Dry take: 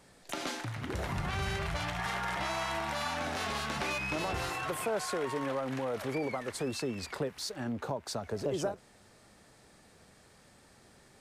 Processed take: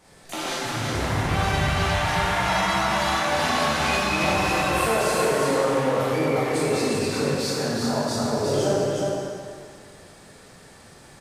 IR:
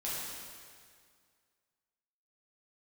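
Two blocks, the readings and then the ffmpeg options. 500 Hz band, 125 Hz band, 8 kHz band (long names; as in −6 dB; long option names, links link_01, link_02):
+12.5 dB, +12.0 dB, +12.0 dB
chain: -filter_complex "[0:a]aecho=1:1:362:0.631[link_01];[1:a]atrim=start_sample=2205[link_02];[link_01][link_02]afir=irnorm=-1:irlink=0,volume=6.5dB"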